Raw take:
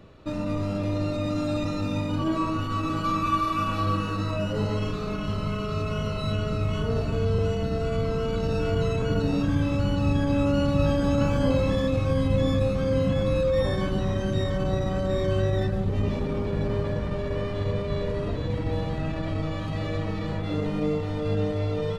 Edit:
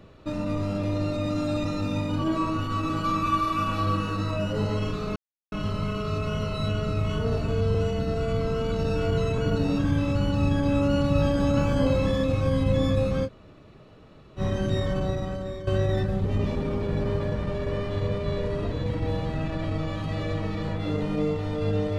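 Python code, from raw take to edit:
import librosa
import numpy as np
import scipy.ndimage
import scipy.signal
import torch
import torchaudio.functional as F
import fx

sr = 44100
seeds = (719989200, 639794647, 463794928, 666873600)

y = fx.edit(x, sr, fx.insert_silence(at_s=5.16, length_s=0.36),
    fx.room_tone_fill(start_s=12.9, length_s=1.13, crossfade_s=0.06),
    fx.fade_out_to(start_s=14.56, length_s=0.75, floor_db=-13.5), tone=tone)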